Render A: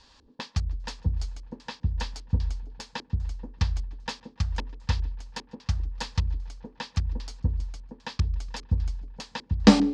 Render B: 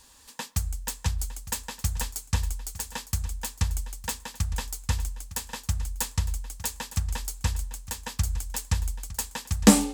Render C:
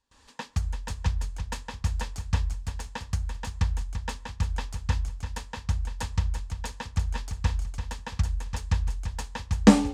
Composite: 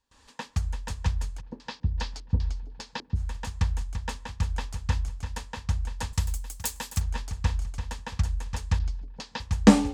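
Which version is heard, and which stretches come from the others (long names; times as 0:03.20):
C
0:01.39–0:03.18: punch in from A, crossfade 0.06 s
0:06.13–0:07.01: punch in from B
0:08.79–0:09.40: punch in from A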